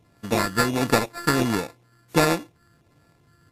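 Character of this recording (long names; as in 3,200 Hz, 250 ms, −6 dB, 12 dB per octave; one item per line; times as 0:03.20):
a buzz of ramps at a fixed pitch in blocks of 32 samples
phaser sweep stages 12, 1.4 Hz, lowest notch 670–3,400 Hz
aliases and images of a low sample rate 3,100 Hz, jitter 0%
WMA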